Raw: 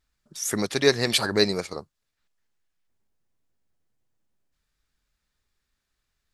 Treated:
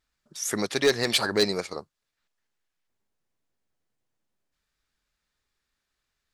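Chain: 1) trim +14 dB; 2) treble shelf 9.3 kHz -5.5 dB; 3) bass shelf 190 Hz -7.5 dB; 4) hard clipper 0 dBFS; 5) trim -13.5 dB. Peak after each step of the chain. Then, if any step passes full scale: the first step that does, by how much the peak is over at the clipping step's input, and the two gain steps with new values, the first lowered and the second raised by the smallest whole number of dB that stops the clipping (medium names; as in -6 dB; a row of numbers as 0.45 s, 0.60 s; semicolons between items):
+9.5 dBFS, +9.5 dBFS, +8.5 dBFS, 0.0 dBFS, -13.5 dBFS; step 1, 8.5 dB; step 1 +5 dB, step 5 -4.5 dB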